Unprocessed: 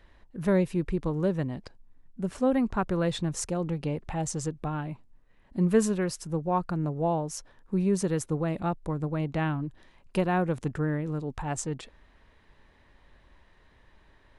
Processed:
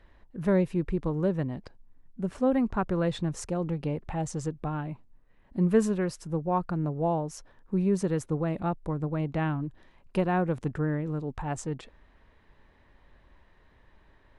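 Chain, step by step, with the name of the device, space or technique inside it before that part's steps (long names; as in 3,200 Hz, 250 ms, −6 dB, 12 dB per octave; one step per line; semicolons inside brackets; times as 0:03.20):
behind a face mask (high-shelf EQ 3,400 Hz −8 dB)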